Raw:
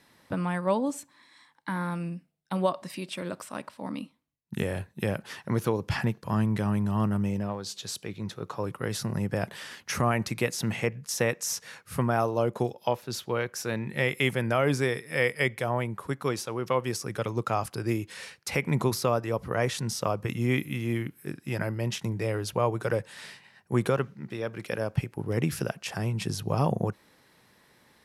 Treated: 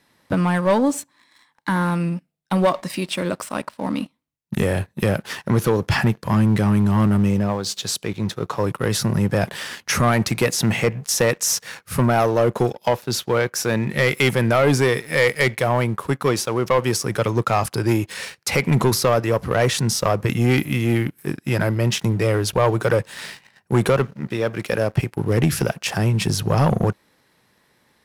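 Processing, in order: waveshaping leveller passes 2; trim +3.5 dB

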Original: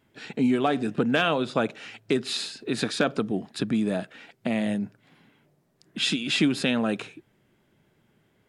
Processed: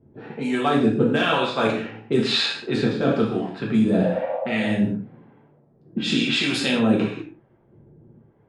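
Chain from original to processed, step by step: level-controlled noise filter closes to 620 Hz, open at -19 dBFS; in parallel at +0.5 dB: level held to a coarse grid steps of 11 dB; on the sum: spectral replace 3.99–4.66 s, 510–1200 Hz after; reverse; compression, threshold -25 dBFS, peak gain reduction 13 dB; reverse; gated-style reverb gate 220 ms falling, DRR -3.5 dB; harmonic tremolo 1 Hz, depth 70%, crossover 610 Hz; trim +7 dB

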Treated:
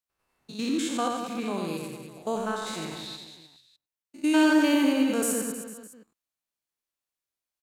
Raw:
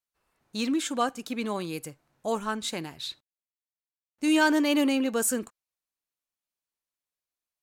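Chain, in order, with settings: spectrogram pixelated in time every 100 ms; on a send: reverse bouncing-ball echo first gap 90 ms, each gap 1.15×, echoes 5

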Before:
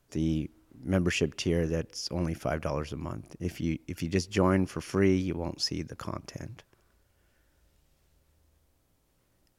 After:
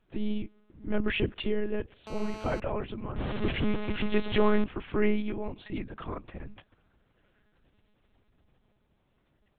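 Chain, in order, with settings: 3.17–4.64 s: jump at every zero crossing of -26 dBFS; monotone LPC vocoder at 8 kHz 210 Hz; 2.07–2.60 s: mobile phone buzz -42 dBFS

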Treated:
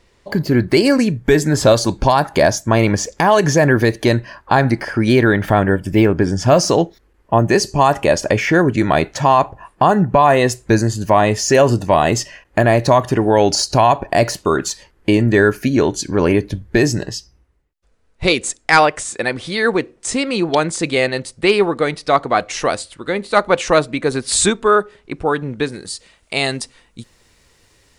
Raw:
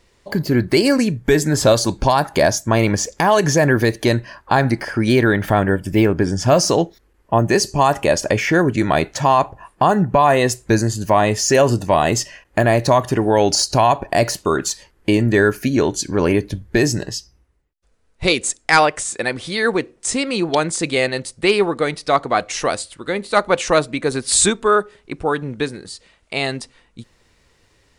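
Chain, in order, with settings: treble shelf 5.9 kHz -5.5 dB, from 25.72 s +8.5 dB; trim +2 dB

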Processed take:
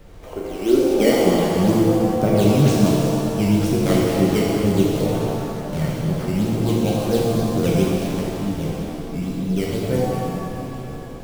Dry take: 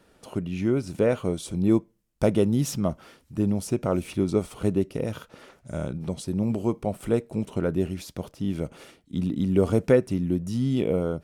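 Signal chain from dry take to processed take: fade out at the end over 3.54 s; decimation with a swept rate 10×, swing 160% 2.1 Hz; high-pass sweep 450 Hz -> 130 Hz, 0.47–1.53 s; added noise brown -41 dBFS; pitch-shifted reverb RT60 2.7 s, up +7 st, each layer -8 dB, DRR -4.5 dB; trim -1 dB

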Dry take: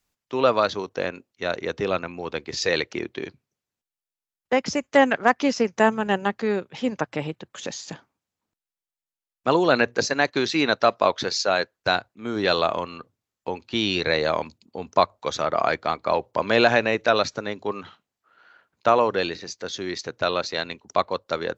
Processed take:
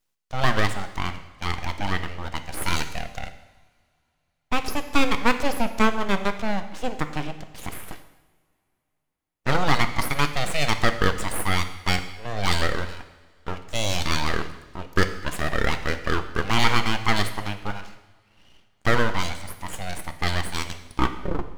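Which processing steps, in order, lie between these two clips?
tape stop on the ending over 0.80 s; full-wave rectifier; two-slope reverb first 0.95 s, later 3.1 s, from -21 dB, DRR 8 dB

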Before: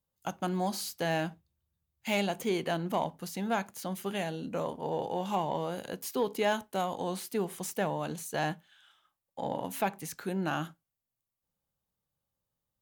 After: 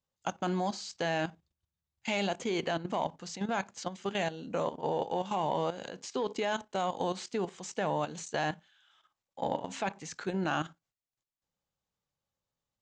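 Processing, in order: steep low-pass 7.7 kHz 72 dB/octave; bass shelf 290 Hz -5 dB; level held to a coarse grid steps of 12 dB; trim +5.5 dB

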